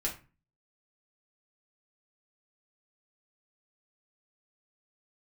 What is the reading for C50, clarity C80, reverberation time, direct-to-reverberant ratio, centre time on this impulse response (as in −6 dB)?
10.5 dB, 16.0 dB, 0.30 s, −3.5 dB, 17 ms